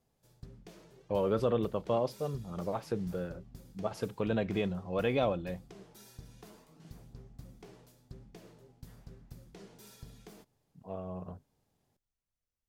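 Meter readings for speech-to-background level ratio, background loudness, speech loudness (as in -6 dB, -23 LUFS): 20.0 dB, -54.0 LUFS, -34.0 LUFS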